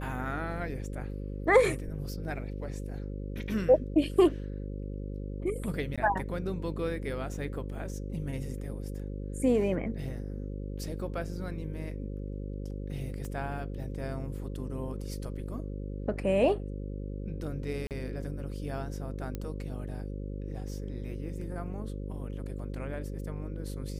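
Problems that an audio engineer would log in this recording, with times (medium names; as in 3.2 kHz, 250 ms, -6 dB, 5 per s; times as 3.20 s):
buzz 50 Hz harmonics 11 -37 dBFS
5.96–5.98 s: dropout 16 ms
13.25 s: pop -28 dBFS
17.87–17.91 s: dropout 38 ms
19.35 s: pop -22 dBFS
22.59 s: dropout 3.5 ms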